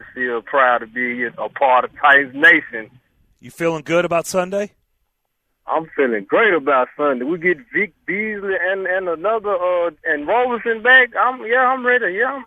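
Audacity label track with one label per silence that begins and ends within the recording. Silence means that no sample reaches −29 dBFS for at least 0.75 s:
4.660000	5.680000	silence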